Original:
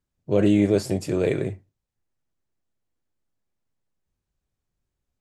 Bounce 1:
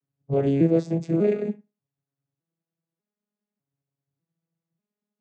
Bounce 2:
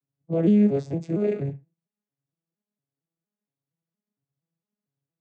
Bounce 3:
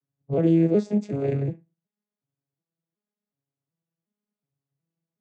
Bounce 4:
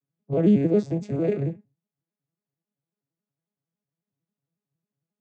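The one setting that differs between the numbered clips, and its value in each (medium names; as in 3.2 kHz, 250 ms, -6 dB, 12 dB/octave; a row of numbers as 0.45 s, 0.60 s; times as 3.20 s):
vocoder on a broken chord, a note every: 597 ms, 231 ms, 368 ms, 91 ms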